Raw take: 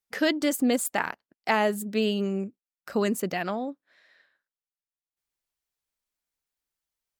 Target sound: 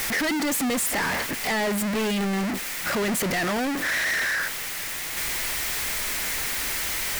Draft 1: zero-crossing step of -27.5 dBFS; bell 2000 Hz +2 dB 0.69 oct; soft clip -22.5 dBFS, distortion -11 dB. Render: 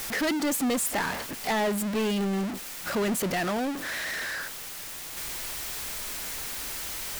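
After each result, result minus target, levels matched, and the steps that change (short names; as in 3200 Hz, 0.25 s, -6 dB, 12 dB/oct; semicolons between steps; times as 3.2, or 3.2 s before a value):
zero-crossing step: distortion -5 dB; 2000 Hz band -3.0 dB
change: zero-crossing step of -20 dBFS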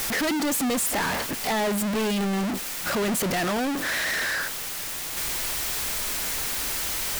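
2000 Hz band -2.5 dB
change: bell 2000 Hz +9.5 dB 0.69 oct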